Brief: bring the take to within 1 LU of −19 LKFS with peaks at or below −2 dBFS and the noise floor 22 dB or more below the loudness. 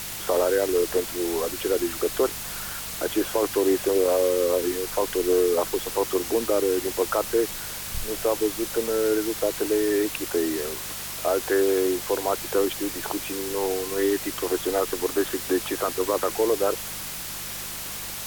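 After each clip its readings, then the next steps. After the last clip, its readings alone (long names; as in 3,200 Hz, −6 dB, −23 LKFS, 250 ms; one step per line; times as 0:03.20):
mains hum 50 Hz; hum harmonics up to 200 Hz; level of the hum −46 dBFS; background noise floor −34 dBFS; target noise floor −47 dBFS; integrated loudness −25.0 LKFS; sample peak −11.0 dBFS; target loudness −19.0 LKFS
→ hum removal 50 Hz, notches 4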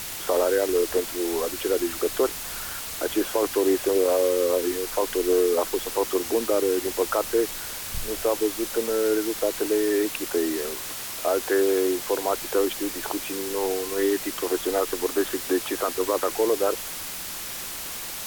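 mains hum none found; background noise floor −34 dBFS; target noise floor −47 dBFS
→ broadband denoise 13 dB, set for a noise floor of −34 dBFS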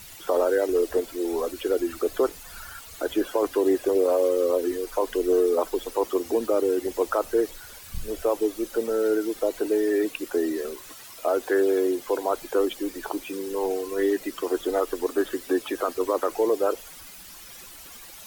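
background noise floor −44 dBFS; target noise floor −48 dBFS
→ broadband denoise 6 dB, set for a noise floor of −44 dBFS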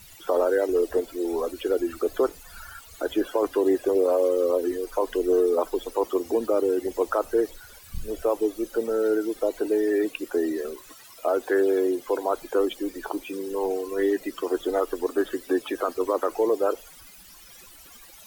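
background noise floor −48 dBFS; integrated loudness −25.5 LKFS; sample peak −12.0 dBFS; target loudness −19.0 LKFS
→ level +6.5 dB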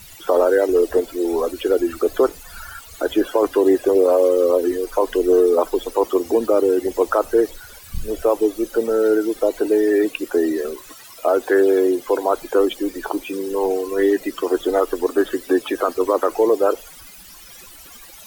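integrated loudness −19.0 LKFS; sample peak −5.5 dBFS; background noise floor −42 dBFS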